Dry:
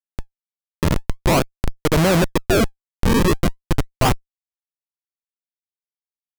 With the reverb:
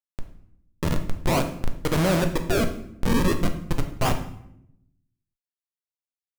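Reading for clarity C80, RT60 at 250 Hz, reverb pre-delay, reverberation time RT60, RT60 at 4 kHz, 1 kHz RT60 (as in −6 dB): 12.5 dB, 1.1 s, 4 ms, 0.75 s, 0.55 s, 0.70 s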